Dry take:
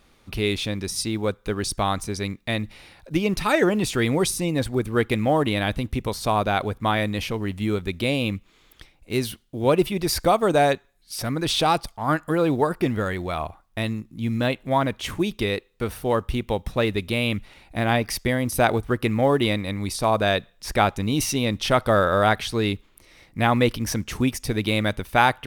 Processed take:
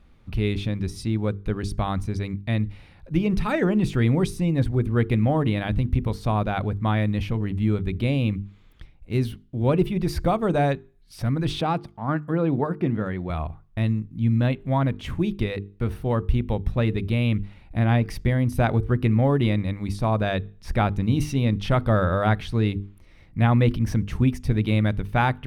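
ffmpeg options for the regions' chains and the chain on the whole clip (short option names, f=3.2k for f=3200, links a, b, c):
-filter_complex "[0:a]asettb=1/sr,asplit=3[a][b][c];[a]atrim=end=11.614[d];[b]atrim=start=11.61:end=13.3,asetpts=PTS-STARTPTS,afade=t=in:d=0.004:c=qsin,afade=t=out:st=1.686:d=0.004:c=qsin,highpass=140,highshelf=f=4.6k:g=-11.5[e];[c]atrim=start=13.296[f];[d][e]acrossfade=d=0.004:c1=hsin:c2=qsin[g];[g][f]acrossfade=d=0.004:c1=qsin:c2=hsin,bass=f=250:g=13,treble=f=4k:g=-10,bandreject=f=50:t=h:w=6,bandreject=f=100:t=h:w=6,bandreject=f=150:t=h:w=6,bandreject=f=200:t=h:w=6,bandreject=f=250:t=h:w=6,bandreject=f=300:t=h:w=6,bandreject=f=350:t=h:w=6,bandreject=f=400:t=h:w=6,bandreject=f=450:t=h:w=6,volume=-5dB"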